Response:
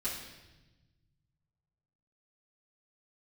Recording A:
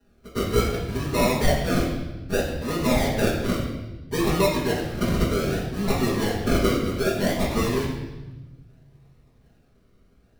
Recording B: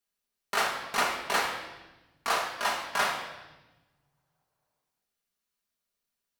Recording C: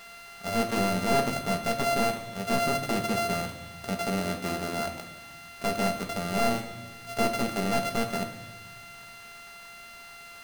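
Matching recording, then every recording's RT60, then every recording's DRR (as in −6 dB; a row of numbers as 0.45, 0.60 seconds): A; 1.1, 1.1, 1.2 seconds; −11.5, −3.0, 3.5 decibels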